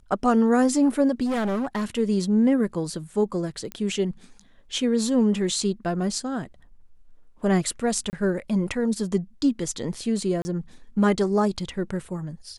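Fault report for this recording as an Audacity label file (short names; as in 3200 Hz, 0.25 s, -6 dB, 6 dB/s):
1.250000	1.850000	clipped -22.5 dBFS
3.720000	3.720000	pop -17 dBFS
8.100000	8.130000	gap 29 ms
10.420000	10.450000	gap 30 ms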